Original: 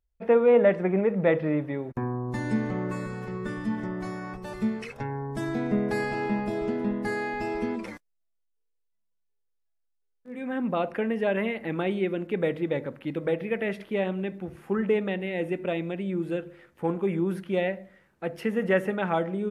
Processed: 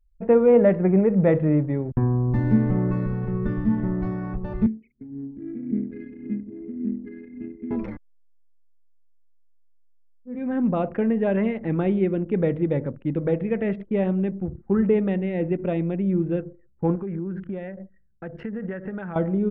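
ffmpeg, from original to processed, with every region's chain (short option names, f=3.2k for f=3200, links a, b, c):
-filter_complex "[0:a]asettb=1/sr,asplit=3[a][b][c];[a]atrim=end=4.664[d];[b]atrim=start=4.66:end=7.71,asetpts=PTS-STARTPTS,afade=t=in:d=0.004:c=qsin,afade=t=out:st=3.046:d=0.004:c=qsin,asplit=3[e][f][g];[e]bandpass=f=270:t=q:w=8,volume=0dB[h];[f]bandpass=f=2.29k:t=q:w=8,volume=-6dB[i];[g]bandpass=f=3.01k:t=q:w=8,volume=-9dB[j];[h][i][j]amix=inputs=3:normalize=0,aphaser=in_gain=1:out_gain=1:delay=3:decay=0.43:speed=1.8:type=sinusoidal[k];[c]atrim=start=7.706[l];[d][k]acrossfade=d=0.004:c1=hsin:c2=qsin[m];[m][l]acrossfade=d=0.004:c1=qsin:c2=hsin,asettb=1/sr,asplit=3[n][o][p];[n]atrim=end=16.954[q];[o]atrim=start=16.95:end=19.16,asetpts=PTS-STARTPTS,afade=t=in:d=0.004:c=qsin,afade=t=out:st=2.206:d=0.004:c=qsin,equalizer=f=1.6k:t=o:w=0.52:g=9.5,acompressor=threshold=-36dB:ratio=3:attack=3.2:release=140:knee=1:detection=peak[r];[p]atrim=start=19.156[s];[q][r]acrossfade=d=0.004:c1=hsin:c2=qsin[t];[t][s]acrossfade=d=0.004:c1=qsin:c2=hsin,lowpass=f=3.2k:p=1,anlmdn=0.1,aemphasis=mode=reproduction:type=riaa"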